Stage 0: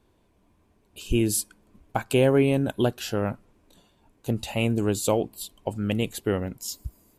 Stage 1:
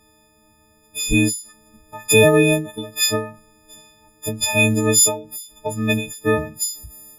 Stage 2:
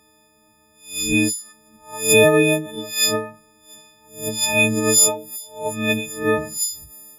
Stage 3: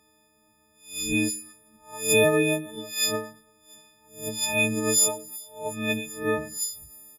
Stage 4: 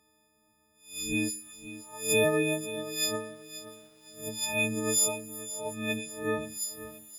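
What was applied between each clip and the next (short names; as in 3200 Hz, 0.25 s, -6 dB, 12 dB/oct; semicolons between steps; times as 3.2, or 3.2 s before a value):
frequency quantiser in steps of 6 st; ending taper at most 130 dB/s; gain +5.5 dB
spectral swells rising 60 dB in 0.40 s; HPF 200 Hz 6 dB/oct
feedback echo 0.113 s, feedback 41%, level -22.5 dB; gain -6.5 dB
lo-fi delay 0.527 s, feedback 35%, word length 8-bit, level -14 dB; gain -5 dB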